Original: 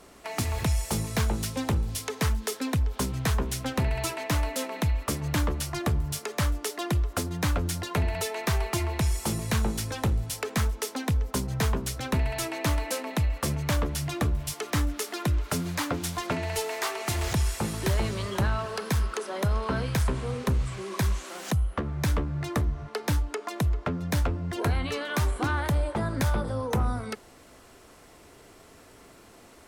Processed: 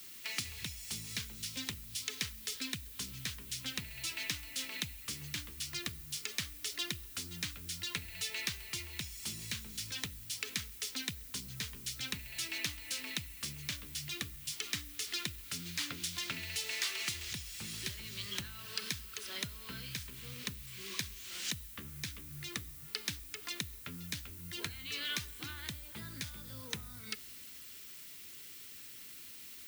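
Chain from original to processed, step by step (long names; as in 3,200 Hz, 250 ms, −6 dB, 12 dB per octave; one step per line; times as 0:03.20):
guitar amp tone stack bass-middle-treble 6-0-2
downward compressor, threshold −49 dBFS, peak gain reduction 14 dB
meter weighting curve D
background noise violet −61 dBFS
on a send: convolution reverb RT60 2.3 s, pre-delay 6 ms, DRR 19 dB
on the sum: level +9.5 dB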